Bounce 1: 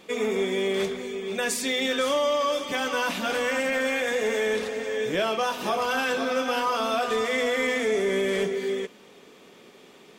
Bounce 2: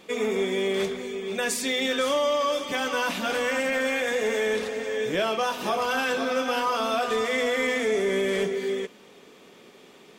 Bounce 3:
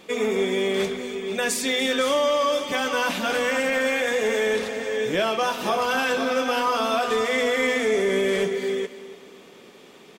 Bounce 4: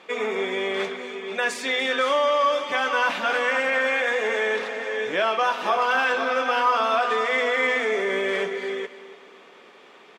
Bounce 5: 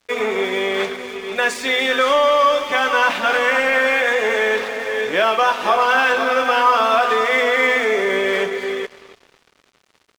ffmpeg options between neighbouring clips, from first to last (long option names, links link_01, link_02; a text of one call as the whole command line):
ffmpeg -i in.wav -af anull out.wav
ffmpeg -i in.wav -af "aecho=1:1:290|580|870:0.158|0.0618|0.0241,volume=2.5dB" out.wav
ffmpeg -i in.wav -af "bandpass=frequency=1300:width_type=q:width=0.76:csg=0,volume=4dB" out.wav
ffmpeg -i in.wav -af "aeval=exprs='sgn(val(0))*max(abs(val(0))-0.00596,0)':channel_layout=same,volume=6.5dB" out.wav